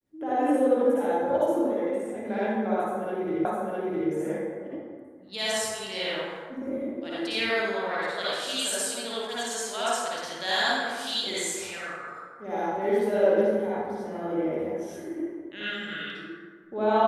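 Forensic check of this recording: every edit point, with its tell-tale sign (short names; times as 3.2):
3.45 repeat of the last 0.66 s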